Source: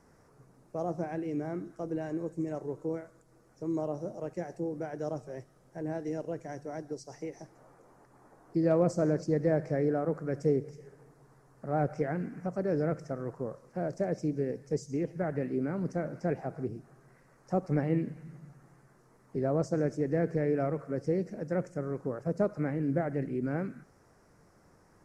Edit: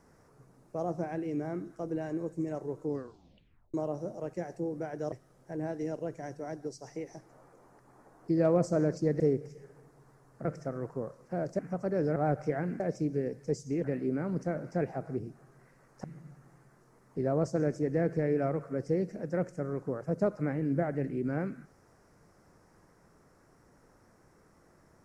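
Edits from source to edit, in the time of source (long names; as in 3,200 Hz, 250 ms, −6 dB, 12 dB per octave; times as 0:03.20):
0:02.83: tape stop 0.91 s
0:05.12–0:05.38: remove
0:09.46–0:10.43: remove
0:11.68–0:12.32: swap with 0:12.89–0:14.03
0:15.07–0:15.33: remove
0:17.53–0:18.22: remove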